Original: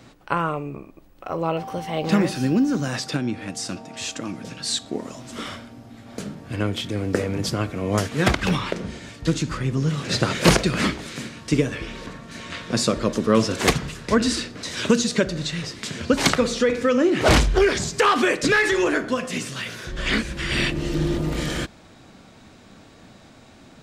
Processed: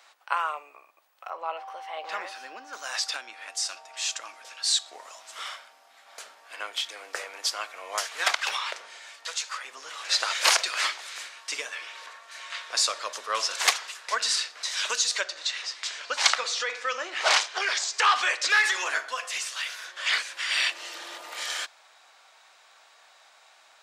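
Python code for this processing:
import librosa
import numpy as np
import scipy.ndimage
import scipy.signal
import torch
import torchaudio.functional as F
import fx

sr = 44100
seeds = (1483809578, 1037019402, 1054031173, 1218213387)

y = fx.lowpass(x, sr, hz=2000.0, slope=6, at=(1.3, 2.73))
y = fx.steep_highpass(y, sr, hz=470.0, slope=36, at=(9.24, 9.65))
y = fx.lowpass(y, sr, hz=7400.0, slope=12, at=(15.21, 18.5))
y = scipy.signal.sosfilt(scipy.signal.butter(4, 760.0, 'highpass', fs=sr, output='sos'), y)
y = fx.dynamic_eq(y, sr, hz=5400.0, q=0.75, threshold_db=-38.0, ratio=4.0, max_db=5)
y = y * librosa.db_to_amplitude(-2.5)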